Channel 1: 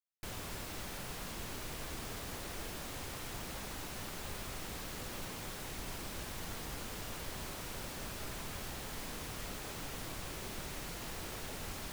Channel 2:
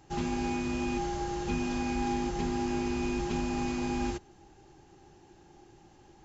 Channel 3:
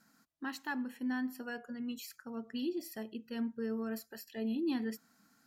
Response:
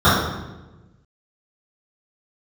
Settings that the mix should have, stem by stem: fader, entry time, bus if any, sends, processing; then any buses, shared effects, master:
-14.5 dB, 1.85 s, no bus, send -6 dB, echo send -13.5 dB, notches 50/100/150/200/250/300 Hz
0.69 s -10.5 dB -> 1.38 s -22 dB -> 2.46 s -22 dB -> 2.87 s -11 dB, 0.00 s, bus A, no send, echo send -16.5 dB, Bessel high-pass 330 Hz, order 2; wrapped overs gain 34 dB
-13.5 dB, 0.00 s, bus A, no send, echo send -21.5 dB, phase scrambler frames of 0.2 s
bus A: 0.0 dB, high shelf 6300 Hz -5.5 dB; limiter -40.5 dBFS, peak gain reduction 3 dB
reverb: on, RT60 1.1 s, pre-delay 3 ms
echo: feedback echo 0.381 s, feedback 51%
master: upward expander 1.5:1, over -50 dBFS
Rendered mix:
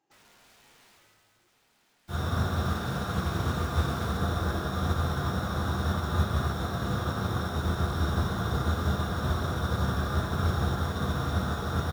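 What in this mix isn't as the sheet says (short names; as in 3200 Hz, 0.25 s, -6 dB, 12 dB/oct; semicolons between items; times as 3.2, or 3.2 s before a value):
stem 1 -14.5 dB -> -6.0 dB; stem 2 -10.5 dB -> -2.0 dB; stem 3: muted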